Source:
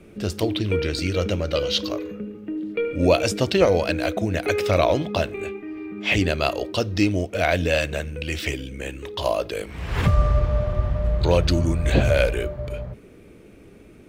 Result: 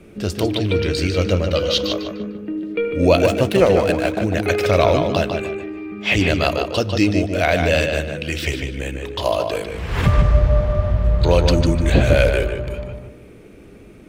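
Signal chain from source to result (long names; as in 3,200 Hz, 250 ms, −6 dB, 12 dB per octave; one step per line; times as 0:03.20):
0:03.24–0:04.27: running median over 9 samples
feedback echo with a low-pass in the loop 150 ms, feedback 31%, low-pass 4,900 Hz, level −5 dB
level +3 dB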